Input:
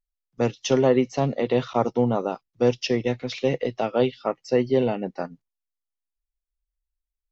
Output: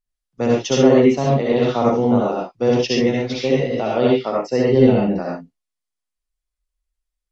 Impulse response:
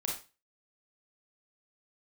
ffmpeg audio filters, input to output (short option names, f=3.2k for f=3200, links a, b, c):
-filter_complex "[0:a]asettb=1/sr,asplit=3[a][b][c];[a]atrim=end=4.684[d];[b]atrim=start=4.68:end=5.1,asetpts=PTS-STARTPTS,afade=t=in:d=0.004:c=qsin,afade=t=out:st=0.416:d=0.004:c=qsin,lowshelf=f=150:g=12[e];[c]atrim=start=5.096[f];[d][e]acrossfade=d=0.004:c1=hsin:c2=qsin[g];[g][f]acrossfade=d=0.004:c1=qsin:c2=hsin[h];[1:a]atrim=start_sample=2205,atrim=end_sample=3528,asetrate=23373,aresample=44100[i];[h][i]afir=irnorm=-1:irlink=0,volume=-1.5dB"